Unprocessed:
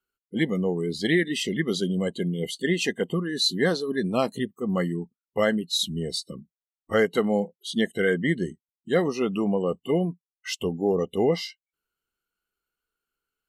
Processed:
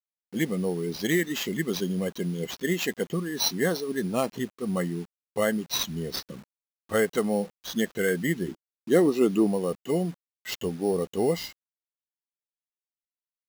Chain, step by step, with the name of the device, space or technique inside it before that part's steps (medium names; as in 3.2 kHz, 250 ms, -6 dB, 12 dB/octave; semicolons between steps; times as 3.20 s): early 8-bit sampler (sample-rate reducer 9.8 kHz, jitter 0%; bit crusher 8-bit); 8.48–9.47 s: peaking EQ 320 Hz +10 dB 0.84 oct; trim -2.5 dB